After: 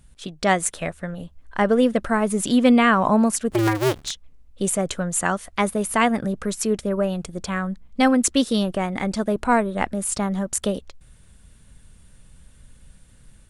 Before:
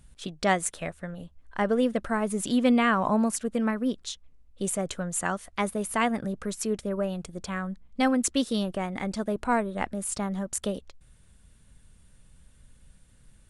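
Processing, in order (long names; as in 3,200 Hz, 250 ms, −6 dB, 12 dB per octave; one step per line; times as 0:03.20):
0:03.50–0:04.11: sub-harmonics by changed cycles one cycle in 2, inverted
automatic gain control gain up to 4.5 dB
level +2 dB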